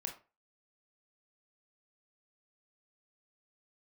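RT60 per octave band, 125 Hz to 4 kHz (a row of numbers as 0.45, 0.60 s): 0.35, 0.30, 0.35, 0.30, 0.30, 0.20 s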